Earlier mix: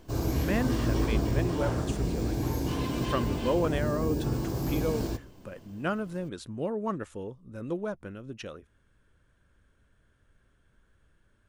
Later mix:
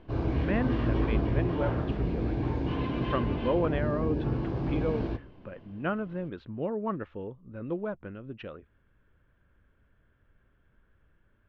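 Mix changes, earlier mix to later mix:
speech: add air absorption 100 m; master: add LPF 3100 Hz 24 dB/oct

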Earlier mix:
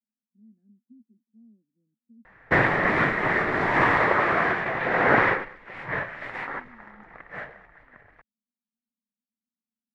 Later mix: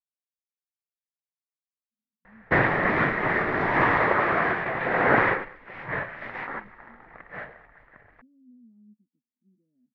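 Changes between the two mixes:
speech: entry +1.90 s; background: add air absorption 150 m

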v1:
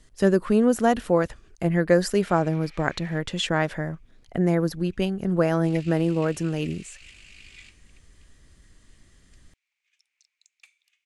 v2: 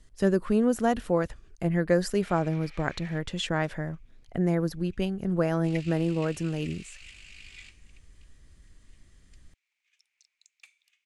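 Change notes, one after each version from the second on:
speech -5.0 dB; master: add low shelf 110 Hz +6.5 dB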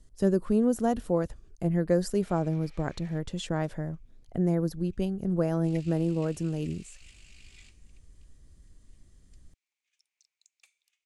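master: add bell 2100 Hz -10 dB 2.1 oct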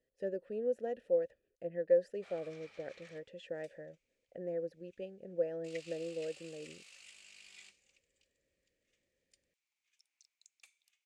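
speech: add vowel filter e

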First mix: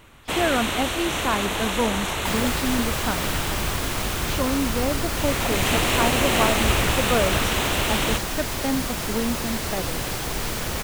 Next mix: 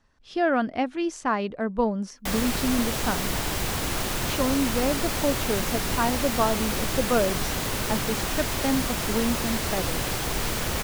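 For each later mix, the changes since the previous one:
first sound: muted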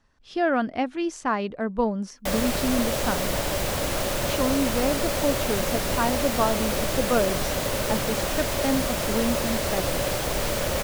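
background: add bell 570 Hz +13 dB 0.33 oct

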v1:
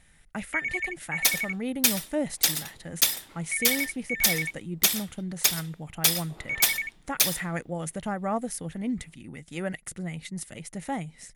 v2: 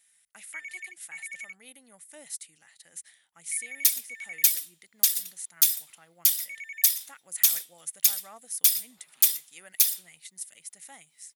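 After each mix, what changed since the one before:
second sound: entry +2.60 s; master: add differentiator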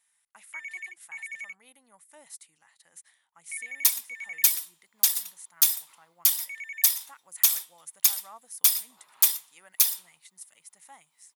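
speech -7.5 dB; master: add bell 1000 Hz +14 dB 0.77 oct

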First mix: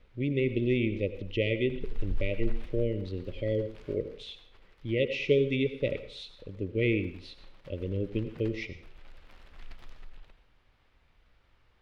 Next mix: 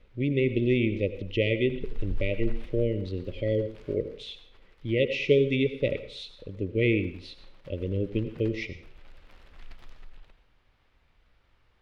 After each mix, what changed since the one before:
speech +3.0 dB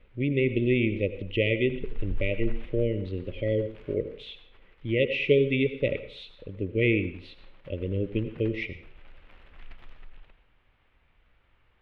master: add resonant high shelf 3900 Hz -10.5 dB, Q 1.5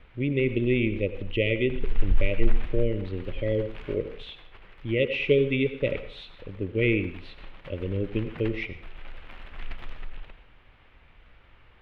background +10.0 dB

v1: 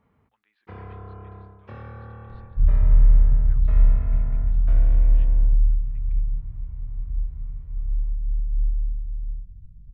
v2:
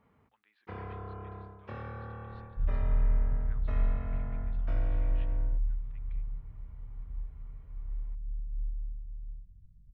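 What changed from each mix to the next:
second sound -8.0 dB; master: add low shelf 170 Hz -4.5 dB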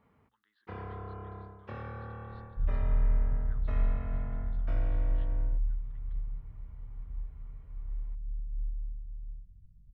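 speech: add fixed phaser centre 2400 Hz, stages 6

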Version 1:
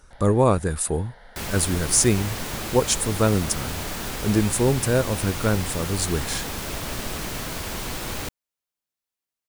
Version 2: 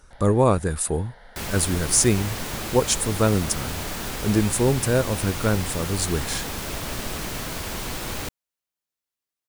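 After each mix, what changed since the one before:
none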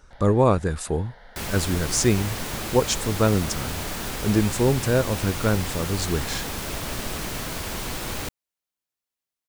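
speech: add bell 9900 Hz -13.5 dB 0.49 oct

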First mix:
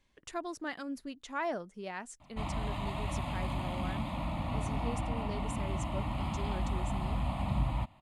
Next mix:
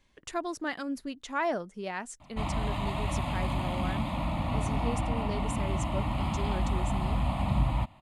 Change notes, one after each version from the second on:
speech +5.0 dB; background +4.5 dB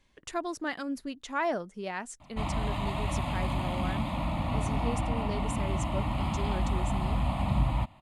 none

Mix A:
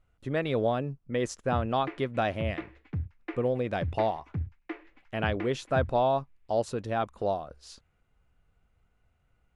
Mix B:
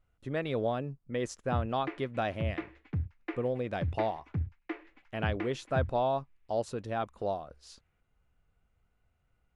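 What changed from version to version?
speech -4.0 dB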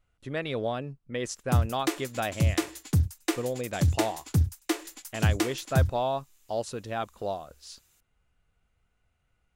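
background: remove ladder low-pass 2600 Hz, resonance 50%; master: add high shelf 2100 Hz +8.5 dB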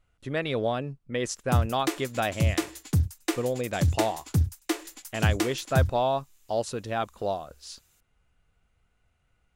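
speech +3.0 dB

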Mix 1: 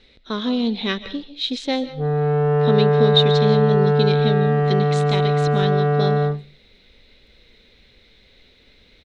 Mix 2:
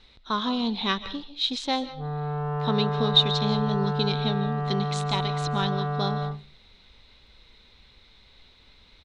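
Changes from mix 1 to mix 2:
background -7.5 dB; master: add graphic EQ 250/500/1000/2000 Hz -5/-9/+9/-6 dB

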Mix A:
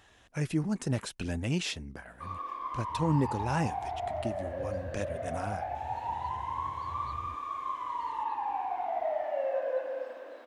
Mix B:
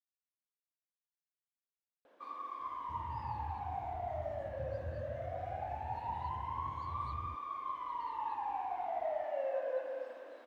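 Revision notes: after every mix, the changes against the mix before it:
speech: muted; first sound -5.0 dB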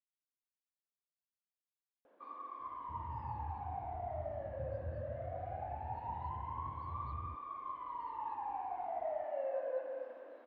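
master: add tape spacing loss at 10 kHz 32 dB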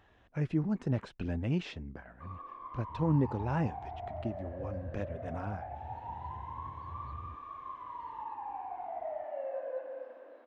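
speech: unmuted

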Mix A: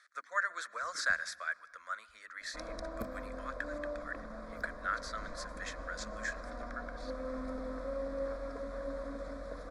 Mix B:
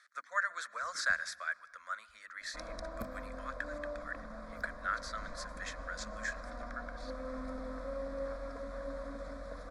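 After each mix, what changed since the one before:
master: add bell 380 Hz -12 dB 0.45 oct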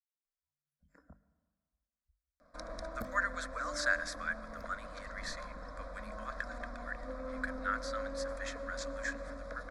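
speech: entry +2.80 s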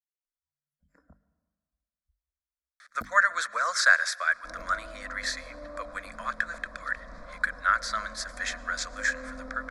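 speech +11.5 dB; second sound: entry +1.90 s

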